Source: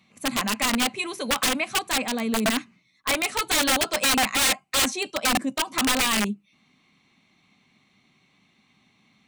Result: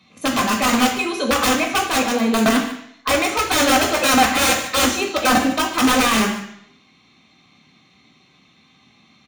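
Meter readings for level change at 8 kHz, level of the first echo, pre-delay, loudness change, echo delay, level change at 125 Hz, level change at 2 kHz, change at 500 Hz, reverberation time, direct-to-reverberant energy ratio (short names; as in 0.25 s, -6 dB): +3.0 dB, -15.0 dB, 3 ms, +5.5 dB, 0.148 s, +7.5 dB, +5.5 dB, +9.0 dB, 0.70 s, 0.5 dB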